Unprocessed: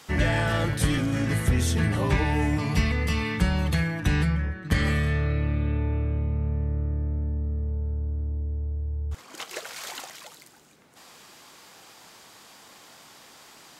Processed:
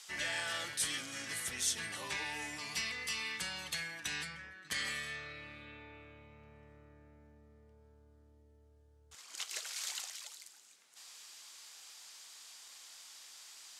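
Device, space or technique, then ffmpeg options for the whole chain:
piezo pickup straight into a mixer: -af "lowpass=7.7k,aderivative,volume=3dB"

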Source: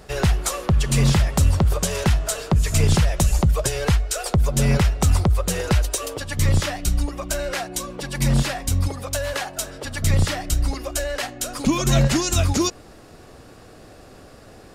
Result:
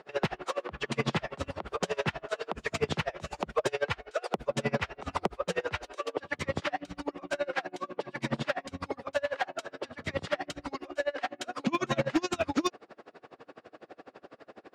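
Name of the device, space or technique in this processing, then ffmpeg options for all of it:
helicopter radio: -af "highpass=320,lowpass=2.6k,aeval=exprs='val(0)*pow(10,-30*(0.5-0.5*cos(2*PI*12*n/s))/20)':c=same,asoftclip=type=hard:threshold=-21.5dB,volume=3dB"

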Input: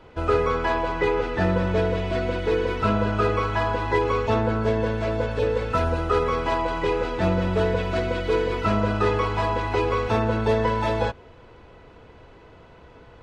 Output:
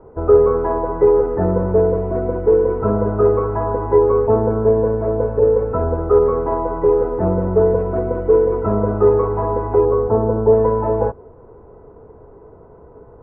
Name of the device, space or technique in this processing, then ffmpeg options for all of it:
under water: -filter_complex "[0:a]asettb=1/sr,asplit=3[a][b][c];[a]atrim=end=9.854[d];[b]atrim=start=9.85:end=10.53,asetpts=PTS-STARTPTS,afade=t=in:d=0.004:c=qsin,afade=t=out:st=0.676:d=0.004:c=qsin,lowpass=1.3k[e];[c]atrim=start=10.526[f];[d][e]acrossfade=d=0.004:c1=hsin:c2=qsin[g];[g][f]acrossfade=d=0.004:c1=qsin:c2=hsin,lowpass=f=1.1k:w=0.5412,lowpass=f=1.1k:w=1.3066,equalizer=f=420:t=o:w=0.29:g=9.5,volume=3.5dB"

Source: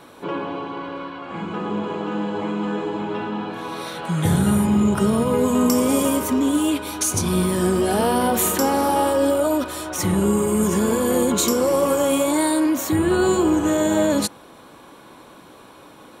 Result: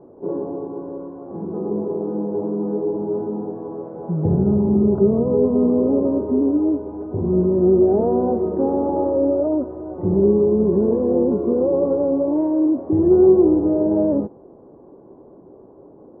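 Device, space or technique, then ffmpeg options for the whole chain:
under water: -af "lowpass=f=700:w=0.5412,lowpass=f=700:w=1.3066,equalizer=f=390:t=o:w=0.32:g=9"

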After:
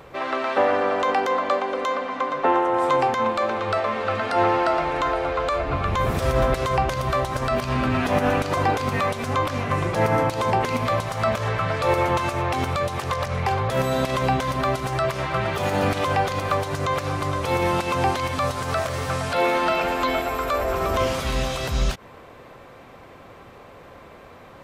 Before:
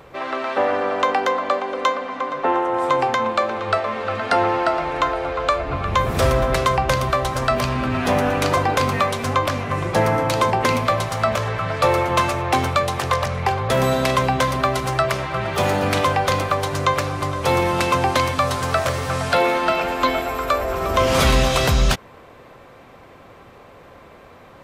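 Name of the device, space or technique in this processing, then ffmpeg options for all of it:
de-esser from a sidechain: -filter_complex "[0:a]asplit=2[a][b];[b]highpass=7k,apad=whole_len=1086216[c];[a][c]sidechaincompress=threshold=-40dB:ratio=5:attack=3.6:release=92"

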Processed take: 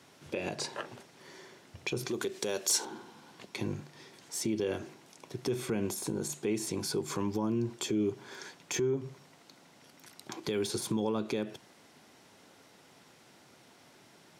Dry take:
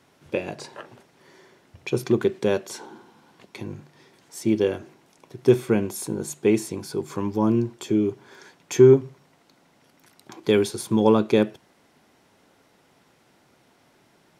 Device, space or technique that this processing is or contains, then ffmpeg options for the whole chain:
broadcast voice chain: -filter_complex "[0:a]highpass=75,deesser=0.7,acompressor=threshold=-20dB:ratio=3,equalizer=f=5.9k:t=o:w=2.2:g=5,alimiter=limit=-22.5dB:level=0:latency=1:release=104,asettb=1/sr,asplit=3[a][b][c];[a]atrim=end=2.084[d];[b]atrim=start=2.08:end=2.85,asetpts=PTS-STARTPTS,afade=t=in:d=0.004:c=qsin,afade=t=out:st=0.766:d=0.004:c=qsin,bass=f=250:g=-8,treble=f=4k:g=10[e];[c]atrim=start=2.846[f];[d][e]acrossfade=d=0.004:c1=hsin:c2=qsin[g];[g][f]acrossfade=d=0.004:c1=qsin:c2=hsin"

